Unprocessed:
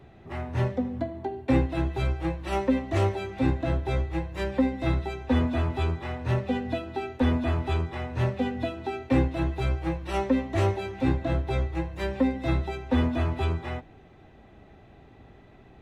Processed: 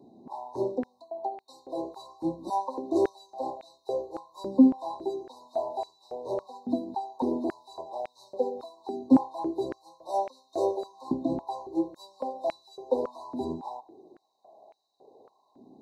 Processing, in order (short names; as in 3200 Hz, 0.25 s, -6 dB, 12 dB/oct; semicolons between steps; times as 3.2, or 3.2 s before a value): FFT band-reject 1100–3700 Hz; stepped high-pass 3.6 Hz 250–2300 Hz; gain -4.5 dB